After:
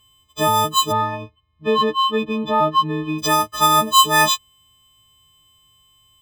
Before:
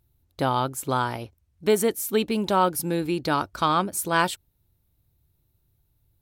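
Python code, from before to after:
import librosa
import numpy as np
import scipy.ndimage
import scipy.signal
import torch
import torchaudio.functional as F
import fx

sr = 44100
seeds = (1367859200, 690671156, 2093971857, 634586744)

y = fx.freq_snap(x, sr, grid_st=6)
y = np.repeat(y[::4], 4)[:len(y)]
y = fx.air_absorb(y, sr, metres=420.0, at=(0.91, 3.18), fade=0.02)
y = y * librosa.db_to_amplitude(2.5)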